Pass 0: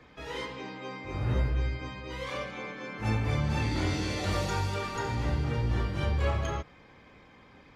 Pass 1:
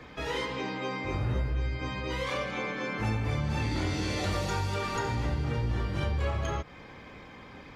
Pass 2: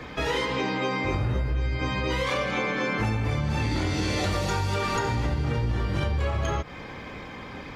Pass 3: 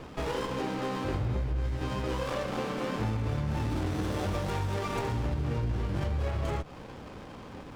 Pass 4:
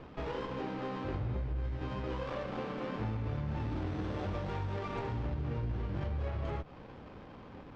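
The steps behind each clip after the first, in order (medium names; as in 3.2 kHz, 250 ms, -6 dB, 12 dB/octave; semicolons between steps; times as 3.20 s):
compression 3:1, threshold -37 dBFS, peak gain reduction 11 dB; trim +7.5 dB
compression, threshold -31 dBFS, peak gain reduction 6 dB; trim +8.5 dB
sliding maximum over 17 samples; trim -4 dB
distance through air 180 m; trim -5 dB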